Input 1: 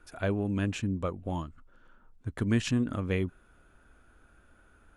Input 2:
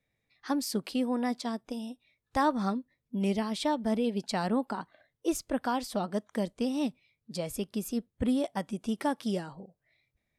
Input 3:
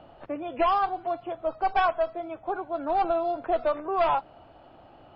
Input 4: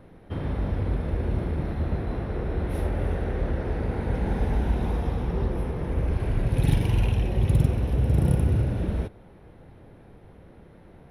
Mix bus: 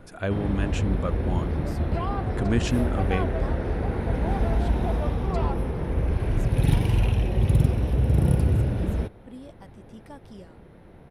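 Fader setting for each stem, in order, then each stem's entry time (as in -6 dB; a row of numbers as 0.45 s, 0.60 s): +2.0 dB, -15.0 dB, -10.0 dB, +1.0 dB; 0.00 s, 1.05 s, 1.35 s, 0.00 s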